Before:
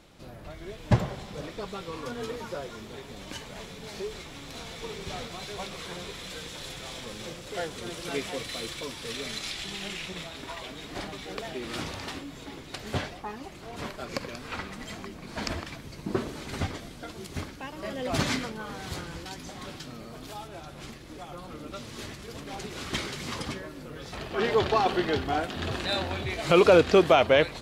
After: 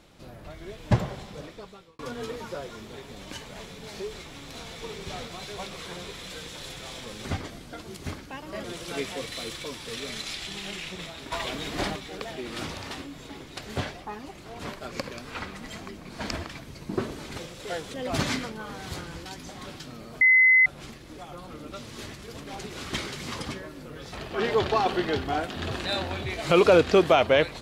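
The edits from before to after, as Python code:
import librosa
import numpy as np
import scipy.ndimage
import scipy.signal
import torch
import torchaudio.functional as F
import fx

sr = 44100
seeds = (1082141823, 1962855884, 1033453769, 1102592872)

y = fx.edit(x, sr, fx.fade_out_span(start_s=1.2, length_s=0.79),
    fx.swap(start_s=7.25, length_s=0.56, other_s=16.55, other_length_s=1.39),
    fx.clip_gain(start_s=10.49, length_s=0.64, db=7.5),
    fx.bleep(start_s=20.21, length_s=0.45, hz=2040.0, db=-14.0), tone=tone)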